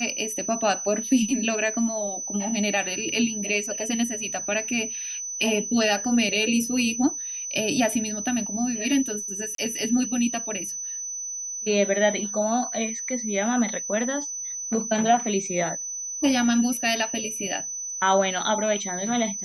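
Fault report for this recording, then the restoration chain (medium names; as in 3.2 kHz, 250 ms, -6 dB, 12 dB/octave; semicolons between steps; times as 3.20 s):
whine 6 kHz -30 dBFS
9.55–9.58 s: dropout 33 ms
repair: band-stop 6 kHz, Q 30; interpolate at 9.55 s, 33 ms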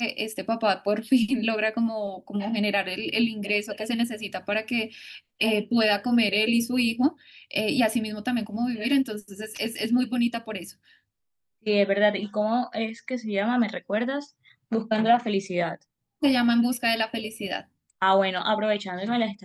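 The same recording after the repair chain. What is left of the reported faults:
nothing left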